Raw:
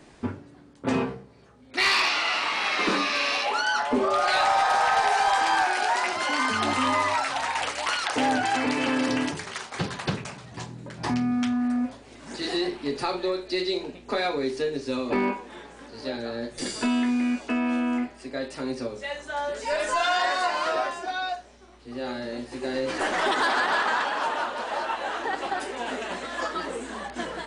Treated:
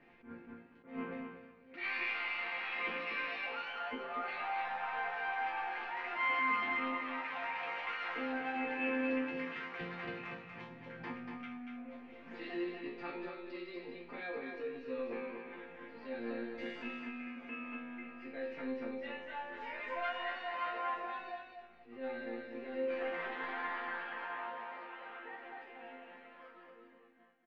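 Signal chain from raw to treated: fade out at the end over 7.75 s; peaking EQ 380 Hz +4.5 dB 0.46 oct; compression, threshold -27 dBFS, peak gain reduction 9.5 dB; saturation -24 dBFS, distortion -19 dB; four-pole ladder low-pass 2.7 kHz, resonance 50%; chord resonator F3 sus4, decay 0.41 s; feedback delay 238 ms, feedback 20%, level -5.5 dB; attacks held to a fixed rise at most 150 dB/s; trim +16 dB

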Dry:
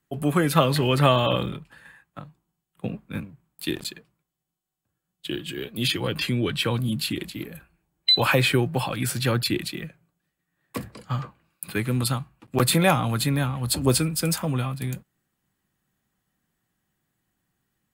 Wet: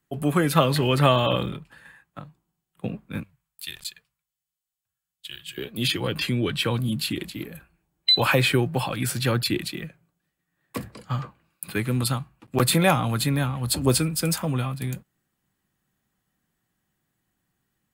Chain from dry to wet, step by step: 3.23–5.58 s: amplifier tone stack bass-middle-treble 10-0-10

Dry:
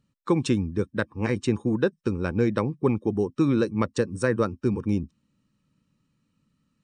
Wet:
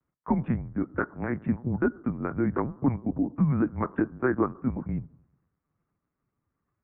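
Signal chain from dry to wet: on a send at -18 dB: reverberation RT60 0.90 s, pre-delay 6 ms; on the sum: LPC vocoder at 8 kHz pitch kept; mistuned SSB -130 Hz 250–2000 Hz

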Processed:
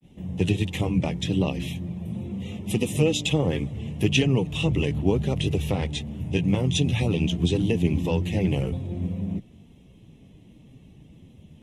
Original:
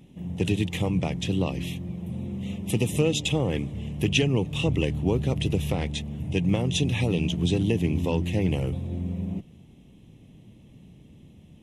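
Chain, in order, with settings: granulator 134 ms, grains 20 per s, spray 11 ms, pitch spread up and down by 0 st; trim +3.5 dB

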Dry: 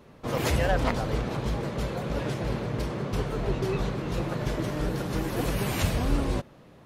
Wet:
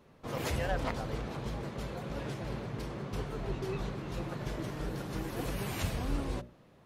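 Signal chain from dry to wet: hum notches 60/120/180/240/300/360/420/480/540/600 Hz; trim -7.5 dB

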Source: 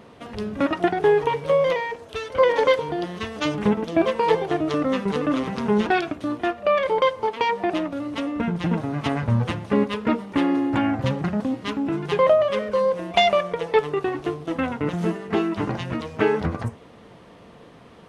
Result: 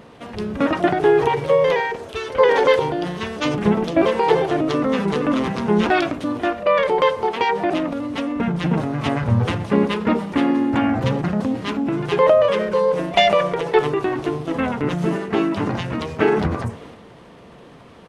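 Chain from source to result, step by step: transient shaper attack 0 dB, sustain +6 dB; harmony voices -3 st -8 dB; trim +2 dB

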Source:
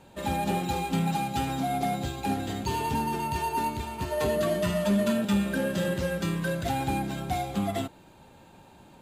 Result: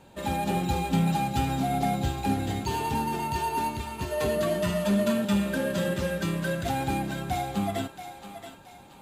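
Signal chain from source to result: 0.55–2.60 s: bass shelf 140 Hz +8.5 dB; on a send: thinning echo 677 ms, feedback 42%, high-pass 580 Hz, level -9 dB

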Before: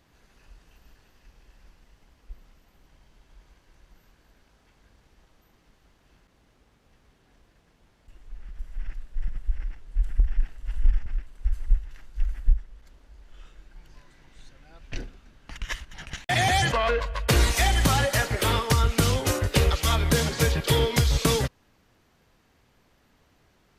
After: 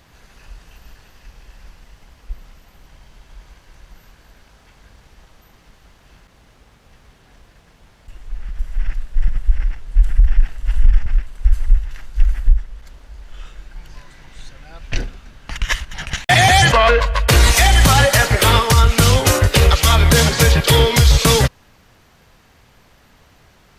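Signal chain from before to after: peaking EQ 310 Hz -5 dB 1.2 oct; loudness maximiser +14 dB; trim -1 dB

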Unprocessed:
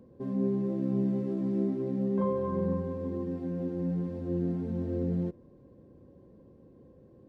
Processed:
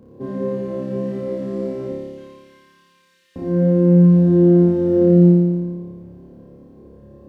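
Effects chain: 1.92–3.36 s: inverse Chebyshev high-pass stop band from 820 Hz, stop band 50 dB; on a send: flutter echo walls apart 4.9 m, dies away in 1.5 s; on the sum: trim +6.5 dB

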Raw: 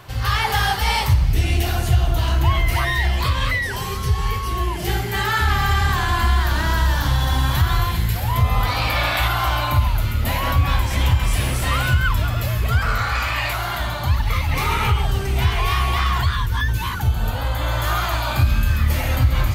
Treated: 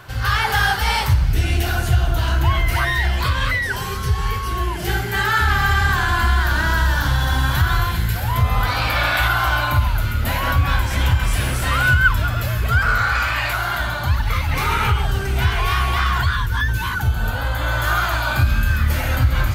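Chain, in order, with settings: peaking EQ 1.5 kHz +9.5 dB 0.25 oct

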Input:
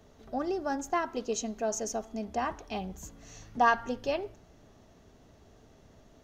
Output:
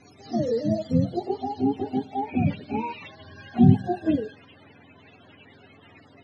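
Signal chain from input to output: spectrum inverted on a logarithmic axis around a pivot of 420 Hz; low-pass sweep 5.7 kHz -> 2.7 kHz, 0.53–2.15 s; pre-echo 43 ms -21.5 dB; trim +8.5 dB

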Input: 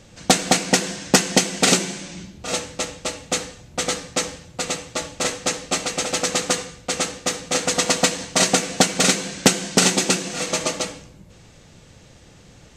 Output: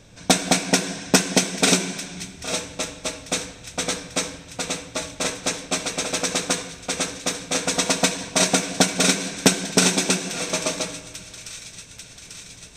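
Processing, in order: rippled EQ curve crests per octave 1.6, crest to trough 6 dB; feedback echo behind a high-pass 842 ms, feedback 70%, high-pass 1.9 kHz, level -16 dB; spring tank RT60 2.5 s, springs 59 ms, chirp 25 ms, DRR 16 dB; trim -2 dB

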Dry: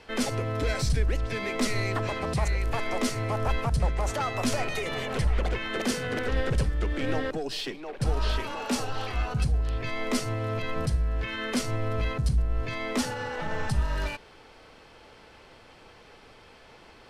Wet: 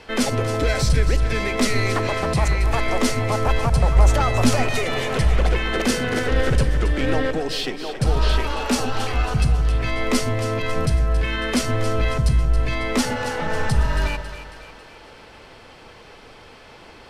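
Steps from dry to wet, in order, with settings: 3.95–4.51 s: bass shelf 170 Hz +9 dB; two-band feedback delay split 700 Hz, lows 143 ms, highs 274 ms, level -10.5 dB; trim +7 dB

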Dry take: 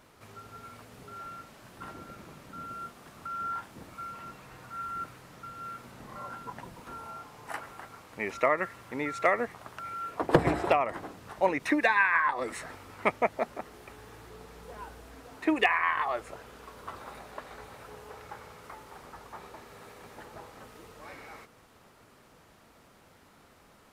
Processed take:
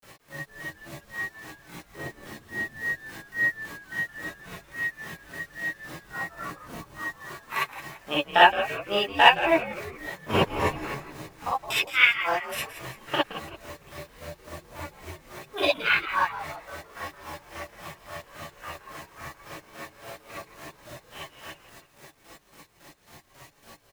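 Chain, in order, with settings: granulator 140 ms, grains 3.6 per s, pitch spread up and down by 0 st; pitch shift +5.5 st; bit crusher 10-bit; on a send: frequency-shifting echo 169 ms, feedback 47%, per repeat -120 Hz, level -12 dB; on the sum: gated-style reverb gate 80 ms rising, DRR -7.5 dB; trim +4.5 dB

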